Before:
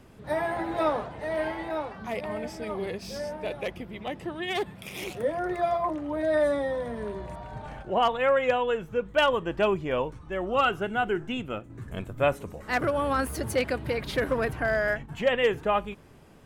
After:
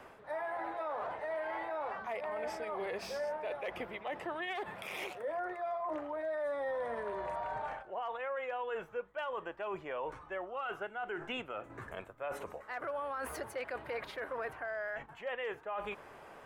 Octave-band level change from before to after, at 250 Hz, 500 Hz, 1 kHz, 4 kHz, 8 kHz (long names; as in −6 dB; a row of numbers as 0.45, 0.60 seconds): −16.0 dB, −11.0 dB, −9.5 dB, −13.5 dB, can't be measured